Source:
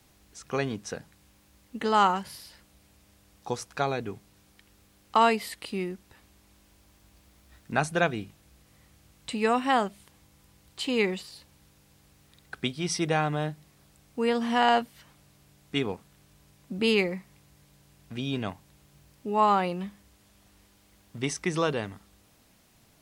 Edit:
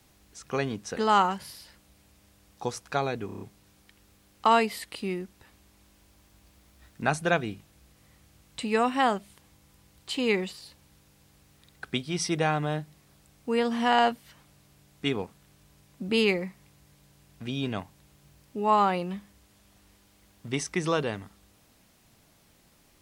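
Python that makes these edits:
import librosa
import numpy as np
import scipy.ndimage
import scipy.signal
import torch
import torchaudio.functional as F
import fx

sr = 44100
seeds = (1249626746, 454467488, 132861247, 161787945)

y = fx.edit(x, sr, fx.cut(start_s=0.97, length_s=0.85),
    fx.stutter(start_s=4.11, slice_s=0.03, count=6), tone=tone)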